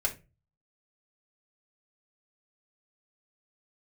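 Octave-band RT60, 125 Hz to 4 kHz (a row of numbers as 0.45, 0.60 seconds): 0.60, 0.40, 0.35, 0.25, 0.25, 0.20 seconds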